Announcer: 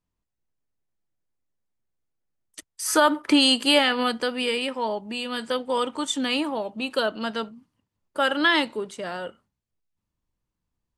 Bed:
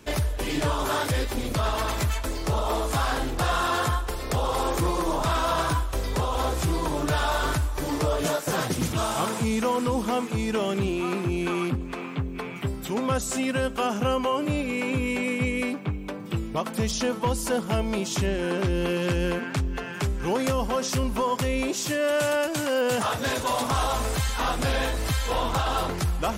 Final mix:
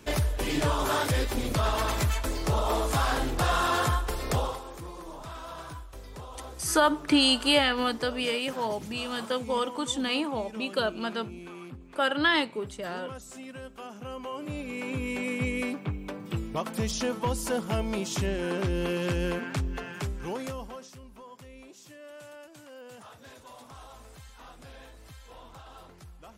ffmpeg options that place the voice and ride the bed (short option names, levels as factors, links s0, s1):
-filter_complex "[0:a]adelay=3800,volume=0.668[s0];[1:a]volume=3.98,afade=t=out:st=4.36:d=0.24:silence=0.16788,afade=t=in:st=14:d=1.48:silence=0.223872,afade=t=out:st=19.69:d=1.24:silence=0.105925[s1];[s0][s1]amix=inputs=2:normalize=0"